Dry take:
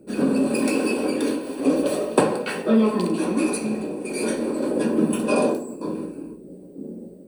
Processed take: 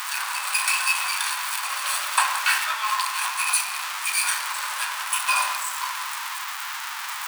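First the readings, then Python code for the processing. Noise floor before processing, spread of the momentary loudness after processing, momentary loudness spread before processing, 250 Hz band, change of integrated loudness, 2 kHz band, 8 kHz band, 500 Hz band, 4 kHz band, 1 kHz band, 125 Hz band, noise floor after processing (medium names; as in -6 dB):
-43 dBFS, 9 LU, 16 LU, under -40 dB, -1.0 dB, +10.0 dB, +10.5 dB, -28.0 dB, +11.5 dB, +6.5 dB, under -40 dB, -32 dBFS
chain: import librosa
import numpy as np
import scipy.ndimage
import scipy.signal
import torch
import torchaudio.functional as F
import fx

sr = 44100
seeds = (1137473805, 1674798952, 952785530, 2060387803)

p1 = x + 0.5 * 10.0 ** (-23.0 / 20.0) * np.sign(x)
p2 = scipy.signal.sosfilt(scipy.signal.butter(8, 940.0, 'highpass', fs=sr, output='sos'), p1)
p3 = p2 + fx.echo_tape(p2, sr, ms=171, feedback_pct=41, wet_db=-12, lp_hz=2400.0, drive_db=11.0, wow_cents=18, dry=0)
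y = F.gain(torch.from_numpy(p3), 5.5).numpy()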